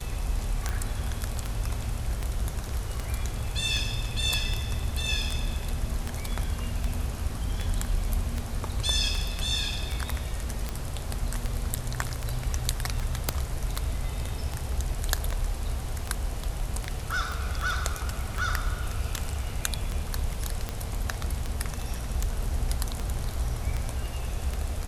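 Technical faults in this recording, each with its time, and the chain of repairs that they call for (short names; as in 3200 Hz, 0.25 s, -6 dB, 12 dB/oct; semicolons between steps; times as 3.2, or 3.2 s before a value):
tick 78 rpm
13.29 pop -8 dBFS
17.32 pop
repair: de-click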